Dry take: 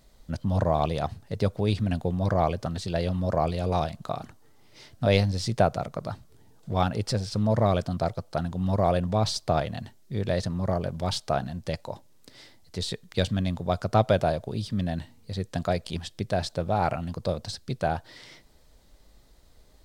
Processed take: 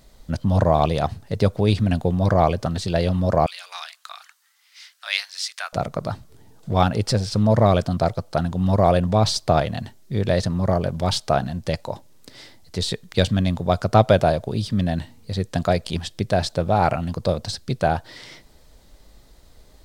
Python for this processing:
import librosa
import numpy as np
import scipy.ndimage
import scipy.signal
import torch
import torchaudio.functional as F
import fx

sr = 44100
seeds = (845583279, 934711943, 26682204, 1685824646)

y = fx.highpass(x, sr, hz=1400.0, slope=24, at=(3.46, 5.73))
y = y * 10.0 ** (6.5 / 20.0)